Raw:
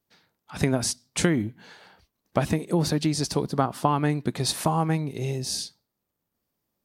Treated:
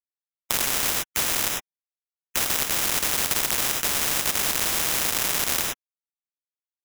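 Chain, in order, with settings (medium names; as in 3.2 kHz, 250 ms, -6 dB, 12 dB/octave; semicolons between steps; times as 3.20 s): tracing distortion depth 0.025 ms; hard clipper -19.5 dBFS, distortion -10 dB; 3.46–5.18 s: tilt EQ -3.5 dB/octave; in parallel at +2 dB: compression 8:1, threshold -40 dBFS, peak gain reduction 26 dB; on the sum: high-order bell 5.9 kHz -9 dB; bit crusher 5-bit; high-pass 1.3 kHz 12 dB/octave; on a send at -11 dB: reverberation, pre-delay 3 ms; on the sum: sample-and-hold 10×; loudness maximiser +27 dB; spectrum-flattening compressor 10:1; trim -1 dB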